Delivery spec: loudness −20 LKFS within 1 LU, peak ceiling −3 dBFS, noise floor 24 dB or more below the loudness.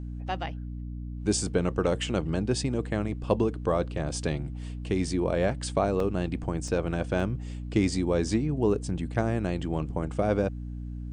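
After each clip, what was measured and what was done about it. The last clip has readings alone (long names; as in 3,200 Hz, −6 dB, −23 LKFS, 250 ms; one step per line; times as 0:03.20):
number of dropouts 3; longest dropout 2.6 ms; mains hum 60 Hz; hum harmonics up to 300 Hz; level of the hum −34 dBFS; integrated loudness −29.0 LKFS; sample peak −10.0 dBFS; target loudness −20.0 LKFS
→ repair the gap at 0:06.00/0:06.68/0:07.20, 2.6 ms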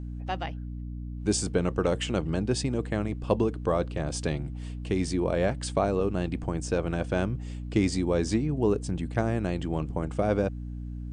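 number of dropouts 0; mains hum 60 Hz; hum harmonics up to 300 Hz; level of the hum −34 dBFS
→ mains-hum notches 60/120/180/240/300 Hz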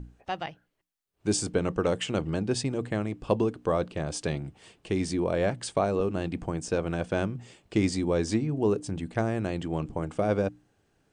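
mains hum none found; integrated loudness −29.5 LKFS; sample peak −10.0 dBFS; target loudness −20.0 LKFS
→ level +9.5 dB
brickwall limiter −3 dBFS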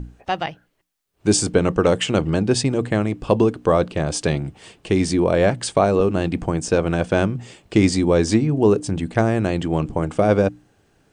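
integrated loudness −20.0 LKFS; sample peak −3.0 dBFS; background noise floor −65 dBFS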